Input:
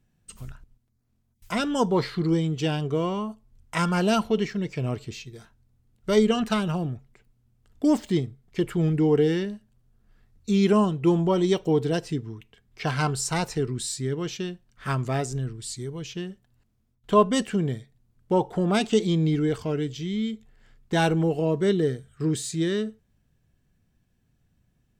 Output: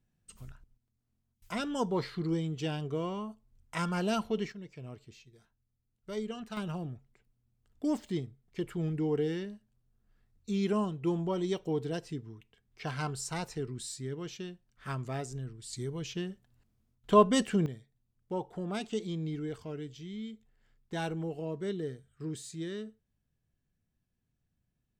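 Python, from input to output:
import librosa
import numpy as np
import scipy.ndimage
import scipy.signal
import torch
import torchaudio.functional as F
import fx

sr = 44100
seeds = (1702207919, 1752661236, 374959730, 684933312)

y = fx.gain(x, sr, db=fx.steps((0.0, -8.5), (4.52, -17.0), (6.57, -10.0), (15.73, -3.0), (17.66, -13.0)))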